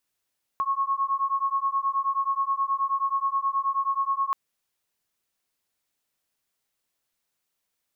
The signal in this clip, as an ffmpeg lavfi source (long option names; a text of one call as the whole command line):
ffmpeg -f lavfi -i "aevalsrc='0.0501*(sin(2*PI*1090*t)+sin(2*PI*1099.4*t))':duration=3.73:sample_rate=44100" out.wav